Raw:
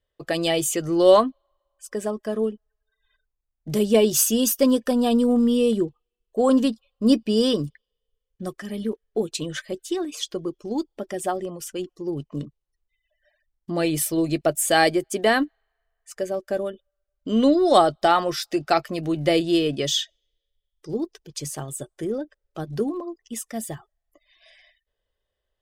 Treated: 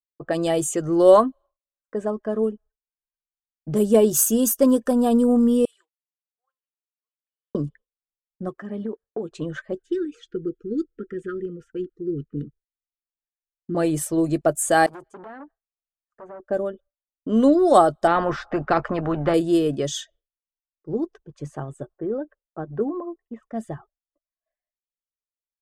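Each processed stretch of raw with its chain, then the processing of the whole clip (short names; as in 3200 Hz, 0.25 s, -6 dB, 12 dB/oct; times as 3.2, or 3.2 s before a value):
5.65–7.55 ladder high-pass 1800 Hz, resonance 40% + compressor, threshold -49 dBFS
8.49–9.31 HPF 140 Hz 6 dB/oct + compressor 5:1, threshold -25 dBFS
9.82–13.75 Chebyshev band-stop 490–1300 Hz, order 5 + high shelf 5800 Hz -9 dB
14.86–16.4 compressor, threshold -33 dBFS + core saturation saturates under 2400 Hz
18.07–19.34 LPF 1300 Hz + spectral compressor 2:1
21.94–23.43 low-pass opened by the level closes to 1300 Hz, open at -21.5 dBFS + tone controls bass -5 dB, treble -15 dB
whole clip: low-pass opened by the level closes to 1300 Hz, open at -17.5 dBFS; expander -43 dBFS; band shelf 3300 Hz -10.5 dB; gain +1.5 dB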